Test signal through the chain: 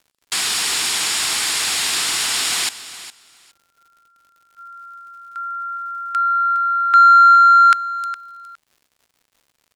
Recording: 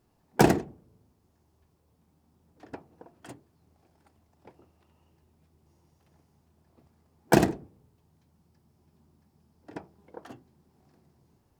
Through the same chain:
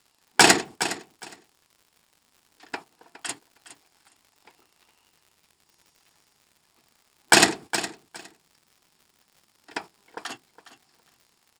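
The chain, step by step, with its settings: frequency weighting ITU-R 468; gate -50 dBFS, range -10 dB; peaking EQ 560 Hz -12 dB 0.25 oct; band-stop 6.1 kHz, Q 7.6; crackle 140 per s -57 dBFS; in parallel at -4 dB: saturation -20 dBFS; on the sum: feedback delay 412 ms, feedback 17%, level -15 dB; loudness maximiser +9 dB; trim -1 dB

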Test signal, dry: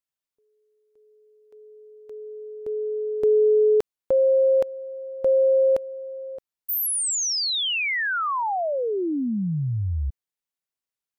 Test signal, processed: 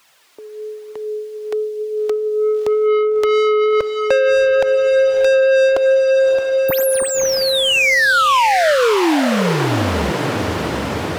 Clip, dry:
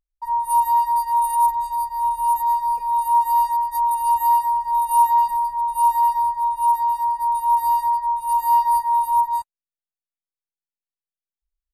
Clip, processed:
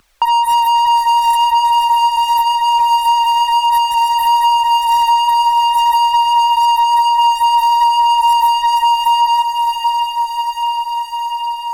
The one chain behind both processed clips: flange 1.1 Hz, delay 0.7 ms, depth 3.1 ms, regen +22%; overdrive pedal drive 29 dB, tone 2.9 kHz, clips at -9.5 dBFS; saturation -11 dBFS; echo that smears into a reverb 612 ms, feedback 57%, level -8 dB; three bands compressed up and down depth 70%; trim +3.5 dB

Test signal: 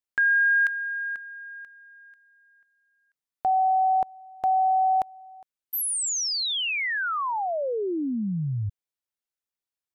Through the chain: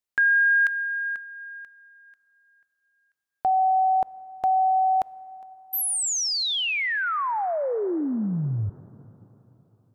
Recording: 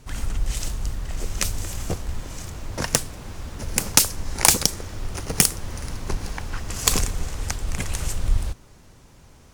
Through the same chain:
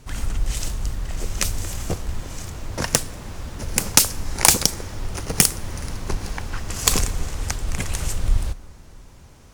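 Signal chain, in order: plate-style reverb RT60 3.7 s, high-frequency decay 0.3×, DRR 19 dB; trim +1.5 dB

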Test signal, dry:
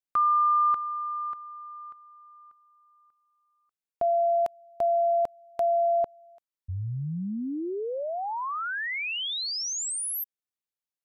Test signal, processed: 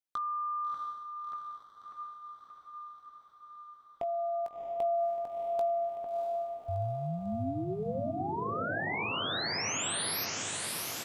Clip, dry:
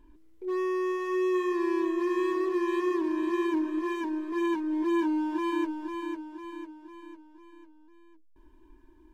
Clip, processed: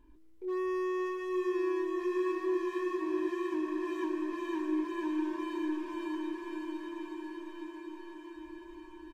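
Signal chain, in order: compression, threshold -31 dBFS; wavefolder -22 dBFS; doubling 19 ms -10 dB; on a send: echo that smears into a reverb 672 ms, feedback 70%, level -3 dB; on the sum: trim -3.5 dB

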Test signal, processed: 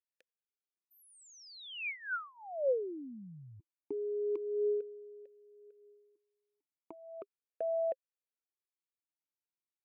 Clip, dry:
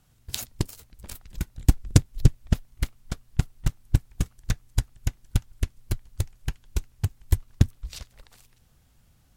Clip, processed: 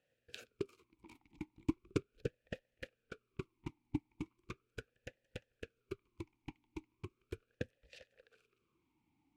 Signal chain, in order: talking filter e-u 0.38 Hz; trim +2 dB

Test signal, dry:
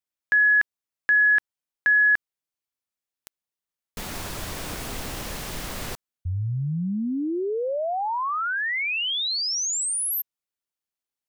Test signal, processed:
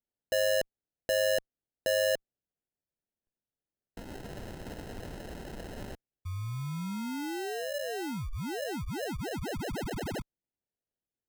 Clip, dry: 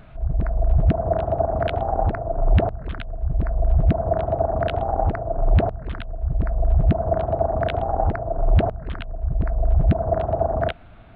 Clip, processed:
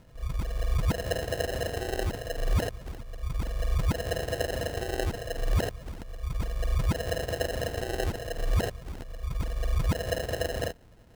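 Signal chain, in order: Chebyshev shaper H 4 -33 dB, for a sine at -7 dBFS; sample-and-hold 38×; trim -9 dB

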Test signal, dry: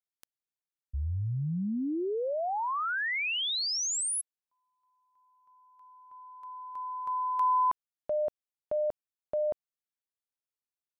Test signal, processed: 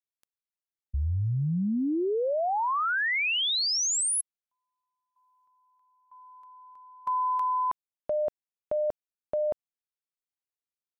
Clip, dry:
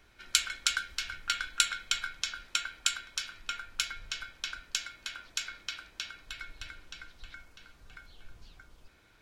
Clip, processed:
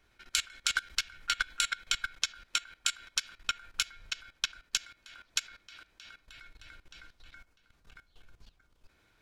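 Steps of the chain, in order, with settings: level held to a coarse grid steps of 17 dB; upward expansion 1.5:1, over -48 dBFS; trim +7.5 dB

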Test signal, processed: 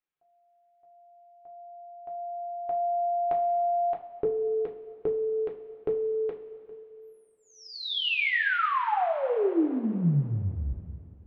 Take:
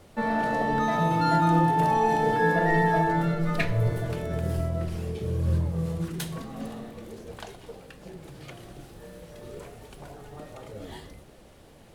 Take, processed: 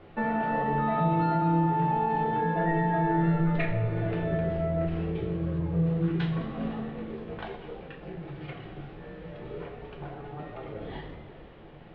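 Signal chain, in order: inverse Chebyshev low-pass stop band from 7.4 kHz, stop band 50 dB; peaking EQ 76 Hz -7 dB 0.2 oct; compression 10:1, threshold -27 dBFS; two-slope reverb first 0.29 s, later 2.8 s, from -16 dB, DRR -0.5 dB

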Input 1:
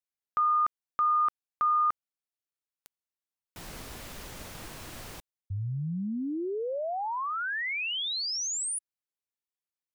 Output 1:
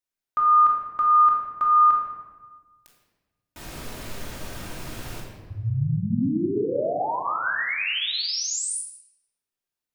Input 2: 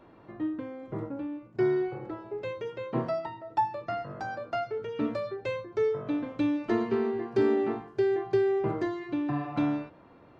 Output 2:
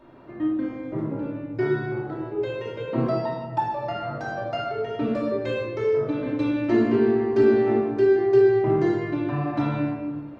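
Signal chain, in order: simulated room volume 1000 m³, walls mixed, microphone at 2.7 m

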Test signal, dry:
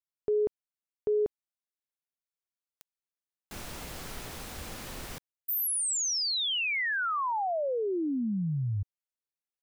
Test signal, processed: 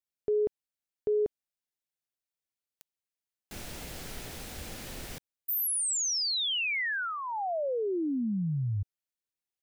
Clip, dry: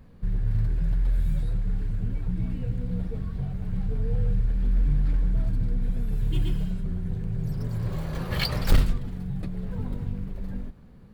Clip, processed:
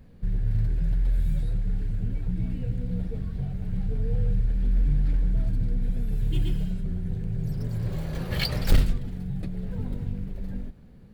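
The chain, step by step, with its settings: peaking EQ 1.1 kHz -6.5 dB 0.68 oct

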